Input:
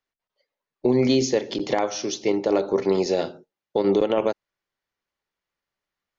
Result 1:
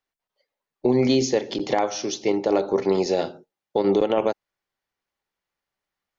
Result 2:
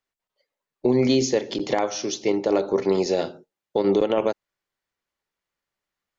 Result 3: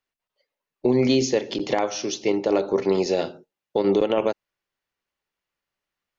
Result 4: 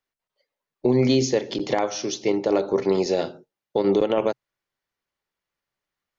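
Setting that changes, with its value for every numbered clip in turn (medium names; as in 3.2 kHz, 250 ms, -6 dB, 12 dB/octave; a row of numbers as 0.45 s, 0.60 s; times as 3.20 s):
peaking EQ, frequency: 790 Hz, 7.5 kHz, 2.7 kHz, 130 Hz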